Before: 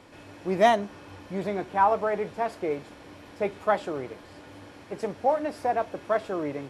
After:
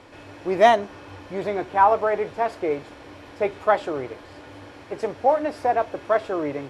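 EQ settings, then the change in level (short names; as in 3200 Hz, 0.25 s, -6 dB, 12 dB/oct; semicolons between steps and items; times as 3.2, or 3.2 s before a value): bell 190 Hz -9 dB 0.56 oct; high shelf 8000 Hz -9.5 dB; +5.0 dB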